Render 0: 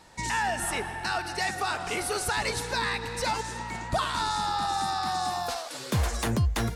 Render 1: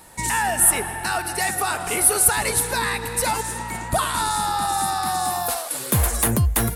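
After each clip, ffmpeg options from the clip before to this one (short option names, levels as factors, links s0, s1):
-af "highshelf=f=8000:t=q:w=1.5:g=14,volume=1.88"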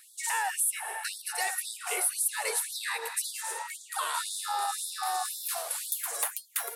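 -af "acompressor=threshold=0.1:ratio=4,afftfilt=real='re*gte(b*sr/1024,350*pow(3400/350,0.5+0.5*sin(2*PI*1.9*pts/sr)))':imag='im*gte(b*sr/1024,350*pow(3400/350,0.5+0.5*sin(2*PI*1.9*pts/sr)))':win_size=1024:overlap=0.75,volume=0.531"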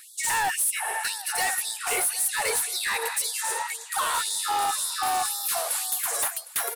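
-af "aecho=1:1:758:0.1,volume=28.2,asoftclip=hard,volume=0.0355,volume=2.37"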